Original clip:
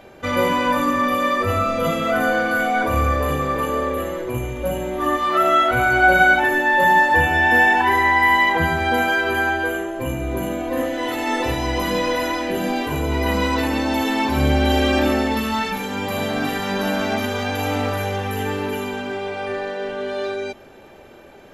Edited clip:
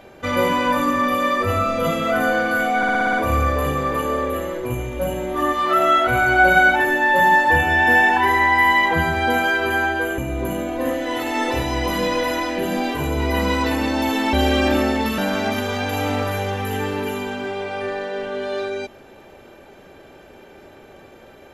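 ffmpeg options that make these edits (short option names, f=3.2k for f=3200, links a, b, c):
-filter_complex "[0:a]asplit=10[a][b][c][d][e][f][g][h][i][j];[a]atrim=end=2.832[k];[b]atrim=start=2.768:end=2.832[l];[c]atrim=start=2.768:end=2.832[m];[d]atrim=start=2.768:end=2.832[n];[e]atrim=start=2.768:end=2.832[o];[f]atrim=start=2.768:end=2.832[p];[g]atrim=start=2.768:end=9.822[q];[h]atrim=start=10.098:end=14.252[r];[i]atrim=start=14.638:end=15.492[s];[j]atrim=start=16.838[t];[k][l]acrossfade=d=0.004:c1=hsin:c2=hsin[u];[u][m]acrossfade=d=0.004:c1=hsin:c2=hsin[v];[v][n]acrossfade=d=0.004:c1=hsin:c2=hsin[w];[w][o]acrossfade=d=0.004:c1=hsin:c2=hsin[x];[x][p]acrossfade=d=0.004:c1=hsin:c2=hsin[y];[y][q]acrossfade=d=0.004:c1=hsin:c2=hsin[z];[z][r]acrossfade=d=0.004:c1=hsin:c2=hsin[aa];[aa][s]acrossfade=d=0.004:c1=hsin:c2=hsin[ab];[ab][t]acrossfade=d=0.004:c1=hsin:c2=hsin"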